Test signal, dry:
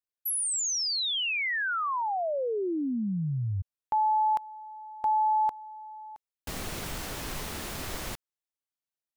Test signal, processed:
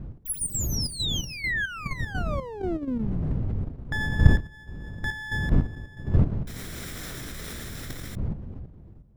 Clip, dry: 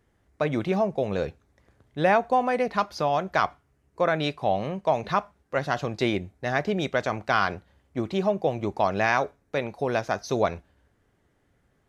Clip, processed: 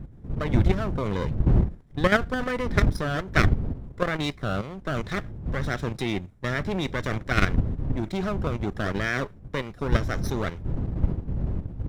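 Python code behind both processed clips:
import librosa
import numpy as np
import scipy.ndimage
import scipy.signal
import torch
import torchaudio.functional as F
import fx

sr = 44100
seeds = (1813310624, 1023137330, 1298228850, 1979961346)

y = fx.lower_of_two(x, sr, delay_ms=0.54)
y = fx.dmg_wind(y, sr, seeds[0], corner_hz=120.0, level_db=-27.0)
y = fx.level_steps(y, sr, step_db=10)
y = y * librosa.db_to_amplitude(3.5)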